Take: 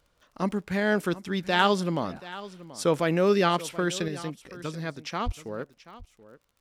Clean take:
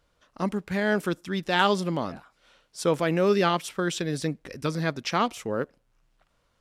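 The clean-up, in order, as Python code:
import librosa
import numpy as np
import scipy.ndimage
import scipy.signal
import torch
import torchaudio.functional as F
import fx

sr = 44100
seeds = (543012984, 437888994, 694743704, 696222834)

y = fx.fix_declick_ar(x, sr, threshold=6.5)
y = fx.highpass(y, sr, hz=140.0, slope=24, at=(5.25, 5.37), fade=0.02)
y = fx.fix_echo_inverse(y, sr, delay_ms=731, level_db=-17.0)
y = fx.fix_level(y, sr, at_s=4.08, step_db=6.5)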